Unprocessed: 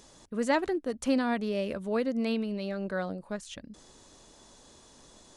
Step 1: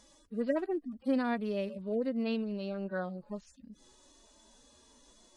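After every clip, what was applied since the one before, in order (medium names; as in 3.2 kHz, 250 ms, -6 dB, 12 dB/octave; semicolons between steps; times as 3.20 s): harmonic-percussive separation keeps harmonic; trim -3 dB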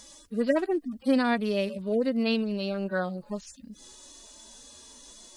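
treble shelf 2.6 kHz +9.5 dB; trim +6 dB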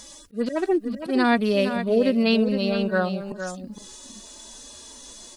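slow attack 158 ms; delay 462 ms -9 dB; trim +6 dB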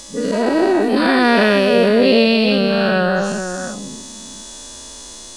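every event in the spectrogram widened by 480 ms; trim +2 dB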